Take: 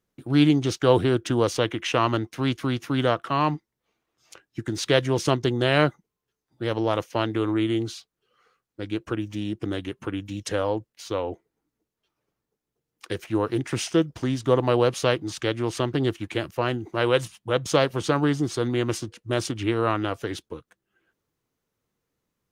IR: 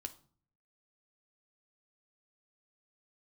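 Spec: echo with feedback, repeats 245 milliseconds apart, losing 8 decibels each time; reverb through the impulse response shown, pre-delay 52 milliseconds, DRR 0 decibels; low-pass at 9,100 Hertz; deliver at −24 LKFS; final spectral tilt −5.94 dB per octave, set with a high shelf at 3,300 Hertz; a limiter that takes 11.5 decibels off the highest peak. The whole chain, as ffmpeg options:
-filter_complex "[0:a]lowpass=9100,highshelf=frequency=3300:gain=-4.5,alimiter=limit=-16dB:level=0:latency=1,aecho=1:1:245|490|735|980|1225:0.398|0.159|0.0637|0.0255|0.0102,asplit=2[link_01][link_02];[1:a]atrim=start_sample=2205,adelay=52[link_03];[link_02][link_03]afir=irnorm=-1:irlink=0,volume=3.5dB[link_04];[link_01][link_04]amix=inputs=2:normalize=0,volume=0.5dB"

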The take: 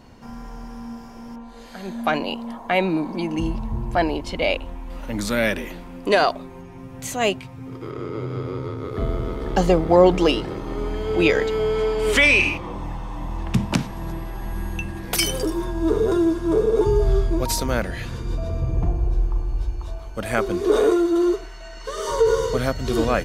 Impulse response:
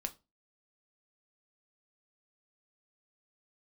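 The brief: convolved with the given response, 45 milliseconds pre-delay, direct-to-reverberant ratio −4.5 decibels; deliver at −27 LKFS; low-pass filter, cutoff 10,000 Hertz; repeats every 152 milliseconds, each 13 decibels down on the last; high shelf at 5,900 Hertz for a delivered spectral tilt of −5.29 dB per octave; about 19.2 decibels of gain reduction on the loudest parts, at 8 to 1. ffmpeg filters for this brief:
-filter_complex "[0:a]lowpass=10000,highshelf=frequency=5900:gain=-6.5,acompressor=threshold=-30dB:ratio=8,aecho=1:1:152|304|456:0.224|0.0493|0.0108,asplit=2[link_01][link_02];[1:a]atrim=start_sample=2205,adelay=45[link_03];[link_02][link_03]afir=irnorm=-1:irlink=0,volume=5.5dB[link_04];[link_01][link_04]amix=inputs=2:normalize=0,volume=1dB"

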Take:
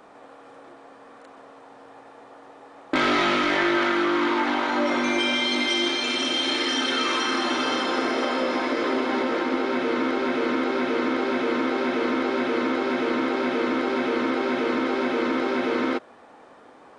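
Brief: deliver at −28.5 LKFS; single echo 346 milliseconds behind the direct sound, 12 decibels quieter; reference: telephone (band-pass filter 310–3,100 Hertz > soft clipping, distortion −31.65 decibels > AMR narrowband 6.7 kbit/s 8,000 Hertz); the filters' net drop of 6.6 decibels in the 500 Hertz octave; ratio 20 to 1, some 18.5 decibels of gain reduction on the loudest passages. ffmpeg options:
ffmpeg -i in.wav -af "equalizer=frequency=500:width_type=o:gain=-7.5,acompressor=threshold=-39dB:ratio=20,highpass=310,lowpass=3100,aecho=1:1:346:0.251,asoftclip=threshold=-27.5dB,volume=19.5dB" -ar 8000 -c:a libopencore_amrnb -b:a 6700 out.amr

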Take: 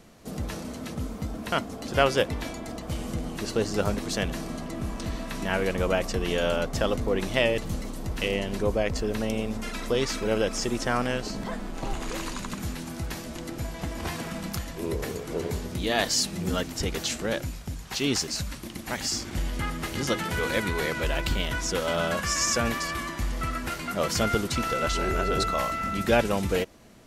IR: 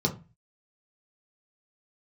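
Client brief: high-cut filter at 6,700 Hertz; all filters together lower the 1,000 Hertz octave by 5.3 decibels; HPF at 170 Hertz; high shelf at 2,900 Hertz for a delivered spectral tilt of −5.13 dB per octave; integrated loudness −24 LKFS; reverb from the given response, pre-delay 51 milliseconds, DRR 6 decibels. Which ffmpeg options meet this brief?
-filter_complex "[0:a]highpass=170,lowpass=6700,equalizer=frequency=1000:width_type=o:gain=-6.5,highshelf=frequency=2900:gain=-8,asplit=2[link_01][link_02];[1:a]atrim=start_sample=2205,adelay=51[link_03];[link_02][link_03]afir=irnorm=-1:irlink=0,volume=-15dB[link_04];[link_01][link_04]amix=inputs=2:normalize=0,volume=5dB"

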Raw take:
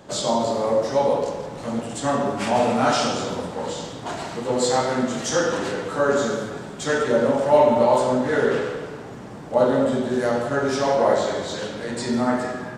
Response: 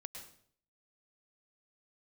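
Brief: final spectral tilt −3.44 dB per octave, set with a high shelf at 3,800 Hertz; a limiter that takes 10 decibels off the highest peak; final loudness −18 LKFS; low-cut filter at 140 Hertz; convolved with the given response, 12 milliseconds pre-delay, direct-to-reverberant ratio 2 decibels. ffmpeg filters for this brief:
-filter_complex "[0:a]highpass=140,highshelf=frequency=3800:gain=6.5,alimiter=limit=-14dB:level=0:latency=1,asplit=2[link_01][link_02];[1:a]atrim=start_sample=2205,adelay=12[link_03];[link_02][link_03]afir=irnorm=-1:irlink=0,volume=2dB[link_04];[link_01][link_04]amix=inputs=2:normalize=0,volume=4dB"

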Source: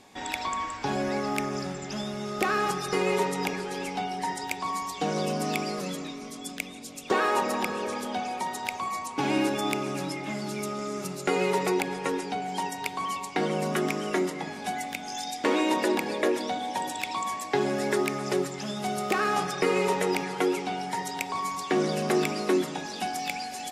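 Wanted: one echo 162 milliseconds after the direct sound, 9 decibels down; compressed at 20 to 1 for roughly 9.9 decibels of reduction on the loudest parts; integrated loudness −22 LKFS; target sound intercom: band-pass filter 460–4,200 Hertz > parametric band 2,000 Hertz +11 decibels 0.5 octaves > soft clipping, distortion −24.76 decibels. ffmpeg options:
ffmpeg -i in.wav -af "acompressor=threshold=-30dB:ratio=20,highpass=460,lowpass=4200,equalizer=frequency=2000:width_type=o:width=0.5:gain=11,aecho=1:1:162:0.355,asoftclip=threshold=-15.5dB,volume=11.5dB" out.wav

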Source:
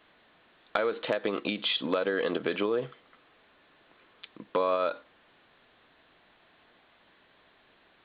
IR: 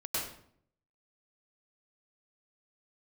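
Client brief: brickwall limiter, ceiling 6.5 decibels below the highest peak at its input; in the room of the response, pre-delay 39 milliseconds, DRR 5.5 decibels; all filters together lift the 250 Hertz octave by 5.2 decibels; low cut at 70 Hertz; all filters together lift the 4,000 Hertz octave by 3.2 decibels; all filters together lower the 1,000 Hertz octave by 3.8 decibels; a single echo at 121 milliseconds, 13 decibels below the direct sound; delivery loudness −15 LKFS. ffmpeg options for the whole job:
-filter_complex "[0:a]highpass=70,equalizer=frequency=250:width_type=o:gain=7,equalizer=frequency=1000:width_type=o:gain=-5.5,equalizer=frequency=4000:width_type=o:gain=4.5,alimiter=limit=-18dB:level=0:latency=1,aecho=1:1:121:0.224,asplit=2[link_01][link_02];[1:a]atrim=start_sample=2205,adelay=39[link_03];[link_02][link_03]afir=irnorm=-1:irlink=0,volume=-10.5dB[link_04];[link_01][link_04]amix=inputs=2:normalize=0,volume=13.5dB"

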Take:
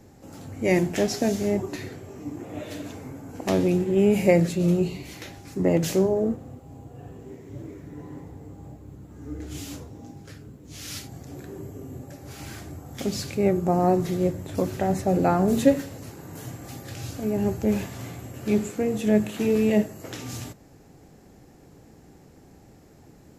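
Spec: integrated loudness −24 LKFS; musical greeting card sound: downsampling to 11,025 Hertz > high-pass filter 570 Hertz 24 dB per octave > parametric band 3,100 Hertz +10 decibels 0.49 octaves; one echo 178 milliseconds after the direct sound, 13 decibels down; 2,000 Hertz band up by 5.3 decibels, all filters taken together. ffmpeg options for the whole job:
ffmpeg -i in.wav -af "equalizer=frequency=2000:width_type=o:gain=3.5,aecho=1:1:178:0.224,aresample=11025,aresample=44100,highpass=frequency=570:width=0.5412,highpass=frequency=570:width=1.3066,equalizer=frequency=3100:width_type=o:width=0.49:gain=10,volume=7dB" out.wav

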